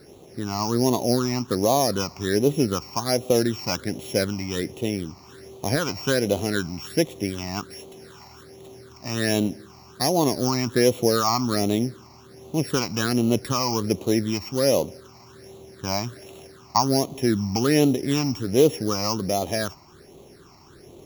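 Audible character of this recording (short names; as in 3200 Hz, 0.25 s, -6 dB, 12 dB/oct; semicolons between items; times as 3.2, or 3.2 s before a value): a buzz of ramps at a fixed pitch in blocks of 8 samples; phasing stages 8, 1.3 Hz, lowest notch 460–1600 Hz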